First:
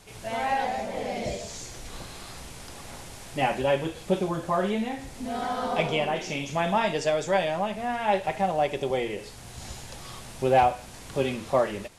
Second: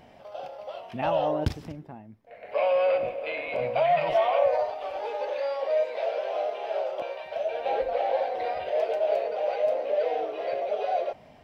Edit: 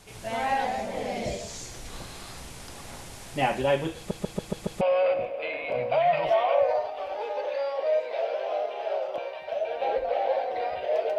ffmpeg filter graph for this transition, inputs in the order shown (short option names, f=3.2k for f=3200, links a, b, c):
-filter_complex "[0:a]apad=whole_dur=11.18,atrim=end=11.18,asplit=6[a][b][c][d][e][f];[a]atrim=end=4.112[g];[b]atrim=start=3.968:end=4.112[h];[c]atrim=start=3.968:end=4.112[i];[d]atrim=start=3.968:end=4.112[j];[e]atrim=start=3.968:end=4.112[k];[f]atrim=start=3.968:end=4.112[l];[1:a]atrim=start=2.648:end=9.02[m];[g][h]acrossfade=d=0.004:c1=hsin:c2=hsin[n];[n][i]acrossfade=d=0.004:c1=hsin:c2=hsin[o];[o][j]acrossfade=d=0.004:c1=hsin:c2=hsin[p];[p][k]acrossfade=d=0.004:c1=hsin:c2=hsin[q];[q][l]acrossfade=d=0.004:c1=hsin:c2=hsin[r];[r][m]acrossfade=d=0.004:c1=hsin:c2=hsin"